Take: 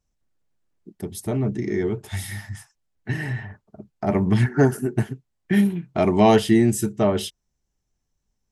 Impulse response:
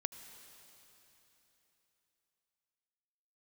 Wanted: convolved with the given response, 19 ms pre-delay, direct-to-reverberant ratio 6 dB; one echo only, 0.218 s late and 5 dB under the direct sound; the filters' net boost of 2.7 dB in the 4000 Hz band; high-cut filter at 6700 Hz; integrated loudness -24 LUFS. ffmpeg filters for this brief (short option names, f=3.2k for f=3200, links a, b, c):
-filter_complex "[0:a]lowpass=6.7k,equalizer=f=4k:t=o:g=4,aecho=1:1:218:0.562,asplit=2[a][b];[1:a]atrim=start_sample=2205,adelay=19[c];[b][c]afir=irnorm=-1:irlink=0,volume=-5.5dB[d];[a][d]amix=inputs=2:normalize=0,volume=-4dB"